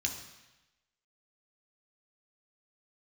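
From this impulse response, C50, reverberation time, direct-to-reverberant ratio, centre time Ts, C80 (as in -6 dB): 7.5 dB, 1.0 s, 1.5 dB, 24 ms, 9.5 dB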